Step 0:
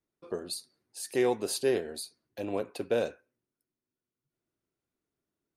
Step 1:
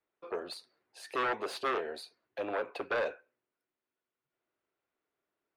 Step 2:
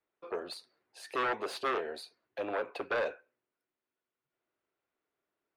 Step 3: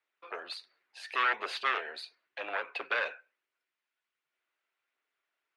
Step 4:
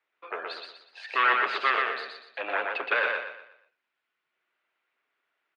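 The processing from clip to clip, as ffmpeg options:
ffmpeg -i in.wav -filter_complex "[0:a]aeval=exprs='0.168*sin(PI/2*3.55*val(0)/0.168)':channel_layout=same,acrossover=split=440 3300:gain=0.141 1 0.0794[link_01][link_02][link_03];[link_01][link_02][link_03]amix=inputs=3:normalize=0,volume=-8.5dB" out.wav
ffmpeg -i in.wav -af anull out.wav
ffmpeg -i in.wav -af "bandpass=frequency=2400:width_type=q:width=1.1:csg=0,aphaser=in_gain=1:out_gain=1:delay=1.5:decay=0.21:speed=1.4:type=triangular,volume=8dB" out.wav
ffmpeg -i in.wav -af "highpass=120,lowpass=3300,aecho=1:1:121|242|363|484|605:0.668|0.241|0.0866|0.0312|0.0112,volume=5.5dB" out.wav

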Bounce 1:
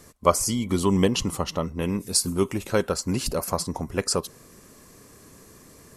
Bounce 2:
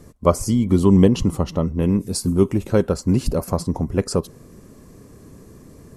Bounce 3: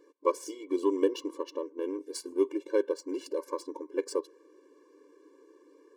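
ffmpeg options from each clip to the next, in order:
ffmpeg -i in.wav -af "tiltshelf=frequency=660:gain=7.5,volume=2.5dB" out.wav
ffmpeg -i in.wav -af "adynamicsmooth=sensitivity=7:basefreq=4500,afftfilt=real='re*eq(mod(floor(b*sr/1024/300),2),1)':imag='im*eq(mod(floor(b*sr/1024/300),2),1)':win_size=1024:overlap=0.75,volume=-7.5dB" out.wav

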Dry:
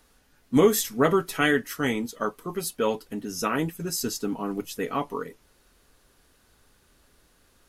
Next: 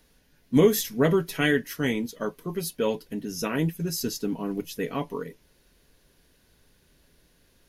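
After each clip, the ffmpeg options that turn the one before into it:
ffmpeg -i in.wav -af "equalizer=frequency=160:width_type=o:width=0.33:gain=6,equalizer=frequency=800:width_type=o:width=0.33:gain=-6,equalizer=frequency=1250:width_type=o:width=0.33:gain=-11,equalizer=frequency=8000:width_type=o:width=0.33:gain=-8" out.wav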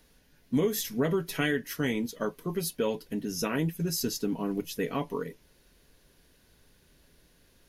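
ffmpeg -i in.wav -af "acompressor=threshold=-25dB:ratio=3" out.wav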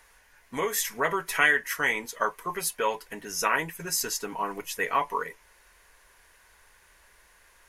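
ffmpeg -i in.wav -af "equalizer=frequency=125:width_type=o:width=1:gain=-11,equalizer=frequency=250:width_type=o:width=1:gain=-12,equalizer=frequency=1000:width_type=o:width=1:gain=12,equalizer=frequency=2000:width_type=o:width=1:gain=10,equalizer=frequency=4000:width_type=o:width=1:gain=-4,equalizer=frequency=8000:width_type=o:width=1:gain=9" out.wav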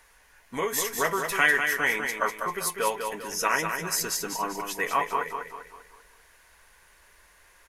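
ffmpeg -i in.wav -af "aecho=1:1:197|394|591|788|985:0.501|0.216|0.0927|0.0398|0.0171" out.wav

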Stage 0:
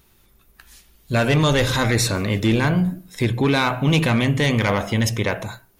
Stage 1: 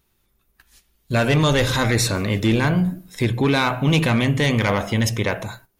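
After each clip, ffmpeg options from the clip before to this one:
ffmpeg -i in.wav -af "agate=range=-10dB:threshold=-45dB:ratio=16:detection=peak" out.wav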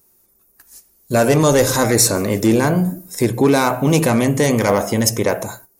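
ffmpeg -i in.wav -af "aexciter=amount=6:drive=8.2:freq=5000,equalizer=frequency=480:width=0.32:gain=15,volume=-7.5dB" out.wav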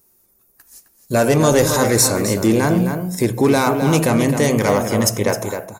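ffmpeg -i in.wav -filter_complex "[0:a]asplit=2[link_01][link_02];[link_02]adelay=262.4,volume=-7dB,highshelf=frequency=4000:gain=-5.9[link_03];[link_01][link_03]amix=inputs=2:normalize=0,volume=-1dB" out.wav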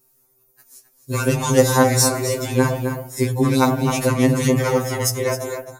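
ffmpeg -i in.wav -af "afftfilt=real='re*2.45*eq(mod(b,6),0)':imag='im*2.45*eq(mod(b,6),0)':win_size=2048:overlap=0.75" out.wav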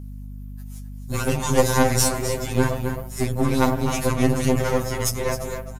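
ffmpeg -i in.wav -af "aeval=exprs='if(lt(val(0),0),0.251*val(0),val(0))':channel_layout=same,aeval=exprs='val(0)+0.02*(sin(2*PI*50*n/s)+sin(2*PI*2*50*n/s)/2+sin(2*PI*3*50*n/s)/3+sin(2*PI*4*50*n/s)/4+sin(2*PI*5*50*n/s)/5)':channel_layout=same,aresample=32000,aresample=44100" out.wav

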